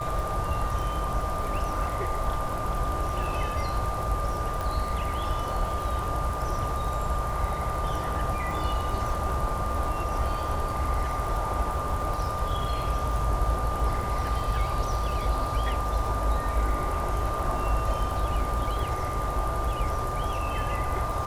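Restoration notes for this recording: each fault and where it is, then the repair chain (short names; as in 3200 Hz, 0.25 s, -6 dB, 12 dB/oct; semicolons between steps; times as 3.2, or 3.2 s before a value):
crackle 53/s -33 dBFS
tone 1200 Hz -32 dBFS
4.61 pop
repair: de-click; notch 1200 Hz, Q 30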